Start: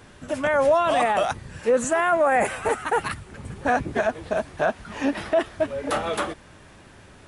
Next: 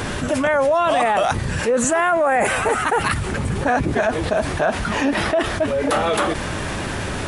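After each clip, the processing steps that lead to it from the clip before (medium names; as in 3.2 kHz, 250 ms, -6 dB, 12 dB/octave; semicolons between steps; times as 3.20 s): level flattener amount 70%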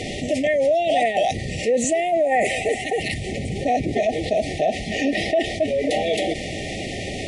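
FFT band-reject 800–1800 Hz; low-pass 7.2 kHz 12 dB/octave; bass shelf 170 Hz -8 dB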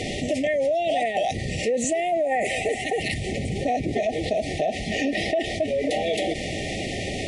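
compression 2.5:1, threshold -22 dBFS, peak gain reduction 5.5 dB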